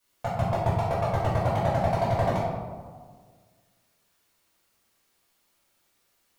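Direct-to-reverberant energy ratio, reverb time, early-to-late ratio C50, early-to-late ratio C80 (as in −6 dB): −9.5 dB, 1.7 s, 0.0 dB, 2.5 dB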